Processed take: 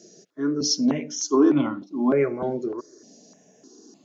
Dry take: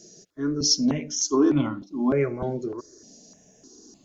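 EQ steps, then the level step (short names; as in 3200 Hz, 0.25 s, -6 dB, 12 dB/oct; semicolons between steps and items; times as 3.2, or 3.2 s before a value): HPF 200 Hz 12 dB/oct; high shelf 4200 Hz -9 dB; +3.0 dB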